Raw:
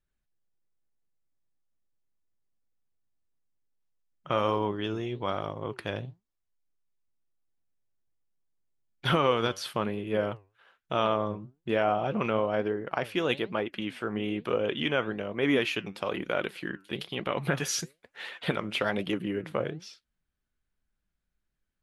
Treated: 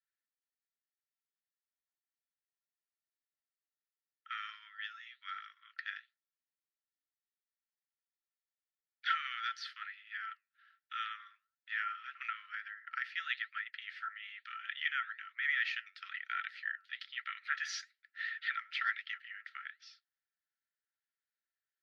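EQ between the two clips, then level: dynamic bell 1.9 kHz, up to +5 dB, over -47 dBFS, Q 2.6; rippled Chebyshev high-pass 1.3 kHz, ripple 9 dB; distance through air 240 m; +3.0 dB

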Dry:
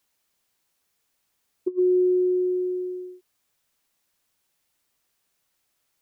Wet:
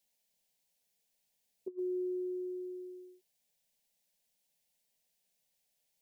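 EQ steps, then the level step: static phaser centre 330 Hz, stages 6; -5.0 dB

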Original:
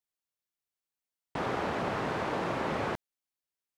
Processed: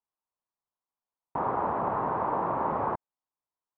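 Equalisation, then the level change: resonant low-pass 1 kHz, resonance Q 3.5; -1.5 dB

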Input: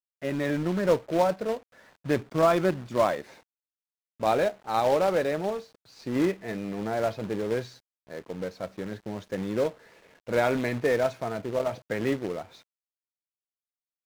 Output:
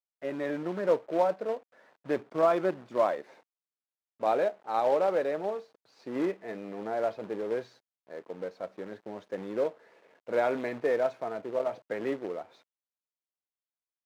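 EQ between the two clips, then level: high-pass 480 Hz 12 dB/octave; tilt EQ -3.5 dB/octave; -3.0 dB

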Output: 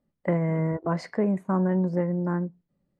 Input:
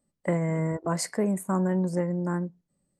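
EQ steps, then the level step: distance through air 260 m; +2.0 dB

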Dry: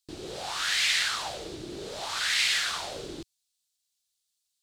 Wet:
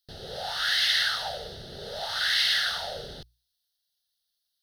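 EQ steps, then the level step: hum notches 60/120 Hz; static phaser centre 1.6 kHz, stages 8; +4.0 dB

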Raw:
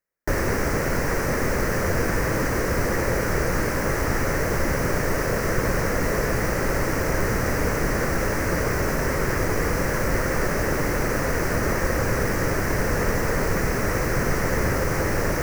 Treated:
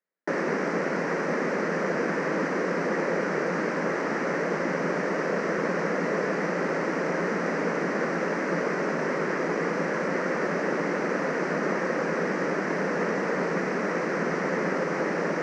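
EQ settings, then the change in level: Gaussian low-pass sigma 1.8 samples; elliptic high-pass 170 Hz, stop band 40 dB; -1.0 dB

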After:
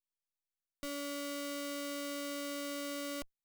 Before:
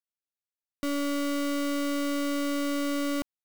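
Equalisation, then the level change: amplifier tone stack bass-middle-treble 5-5-5; bass shelf 88 Hz +8 dB; peaking EQ 520 Hz +10.5 dB 1.2 oct; +1.0 dB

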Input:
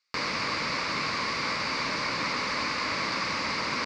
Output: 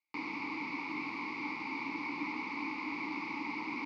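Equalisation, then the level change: vowel filter u; +4.5 dB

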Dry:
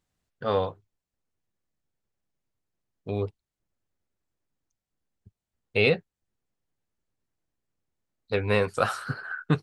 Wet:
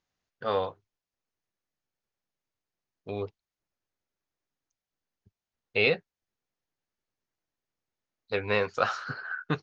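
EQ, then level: Chebyshev low-pass 6.7 kHz, order 6; bass shelf 260 Hz -9.5 dB; 0.0 dB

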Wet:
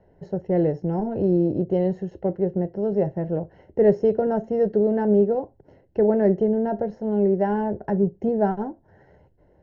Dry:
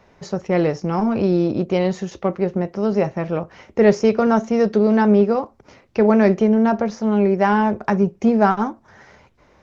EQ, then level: boxcar filter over 37 samples; peaking EQ 230 Hz -9.5 dB 0.33 oct; hum notches 60/120 Hz; 0.0 dB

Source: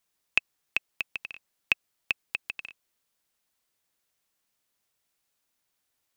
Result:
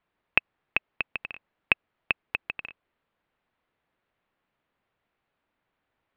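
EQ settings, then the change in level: Gaussian low-pass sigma 3.4 samples; +8.5 dB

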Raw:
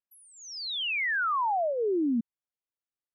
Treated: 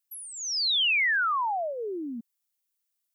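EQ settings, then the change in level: tilt EQ +4.5 dB/octave; 0.0 dB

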